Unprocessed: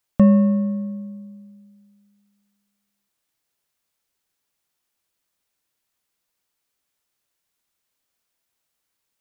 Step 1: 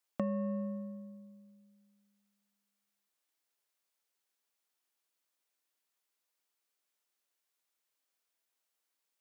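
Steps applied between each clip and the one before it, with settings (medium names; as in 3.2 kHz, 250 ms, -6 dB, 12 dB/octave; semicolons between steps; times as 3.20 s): high-pass 310 Hz 12 dB/octave; compression, threshold -24 dBFS, peak gain reduction 8.5 dB; trim -7 dB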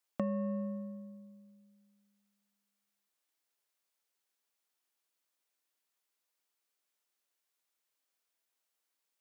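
no audible change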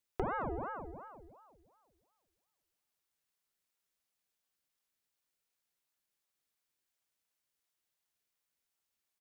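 feedback delay 220 ms, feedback 57%, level -18.5 dB; ring modulator with a swept carrier 610 Hz, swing 80%, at 2.8 Hz; trim +1 dB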